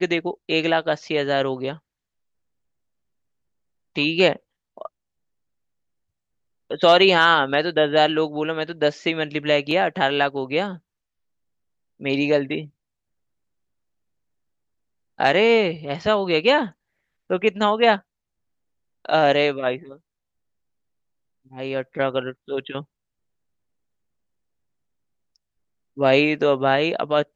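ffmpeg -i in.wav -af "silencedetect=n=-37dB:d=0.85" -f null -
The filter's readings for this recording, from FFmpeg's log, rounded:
silence_start: 1.77
silence_end: 3.96 | silence_duration: 2.19
silence_start: 4.87
silence_end: 6.71 | silence_duration: 1.84
silence_start: 10.77
silence_end: 12.01 | silence_duration: 1.24
silence_start: 12.66
silence_end: 15.19 | silence_duration: 2.52
silence_start: 17.99
silence_end: 19.05 | silence_duration: 1.06
silence_start: 19.96
silence_end: 21.52 | silence_duration: 1.57
silence_start: 22.83
silence_end: 25.97 | silence_duration: 3.15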